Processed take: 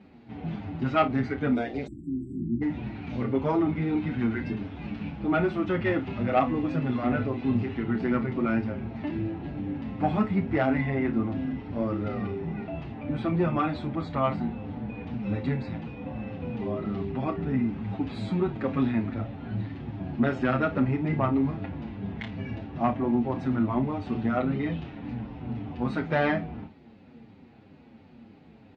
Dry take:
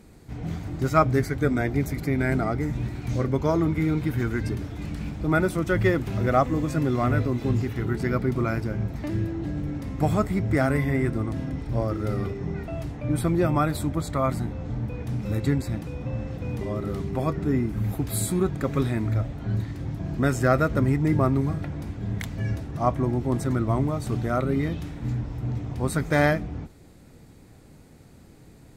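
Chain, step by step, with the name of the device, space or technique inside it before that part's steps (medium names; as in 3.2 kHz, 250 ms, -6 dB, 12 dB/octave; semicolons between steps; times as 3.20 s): 1.55–2.40 s: graphic EQ 125/250/500/1000/2000/4000/8000 Hz -10/-8/+11/-8/-6/+5/+9 dB; barber-pole flanger into a guitar amplifier (endless flanger 7.3 ms -3 Hz; saturation -17 dBFS, distortion -18 dB; cabinet simulation 92–3800 Hz, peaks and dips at 130 Hz -4 dB, 230 Hz +9 dB, 820 Hz +6 dB, 2.7 kHz +6 dB); early reflections 30 ms -10.5 dB, 53 ms -16.5 dB; 1.88–2.62 s: spectral selection erased 380–7400 Hz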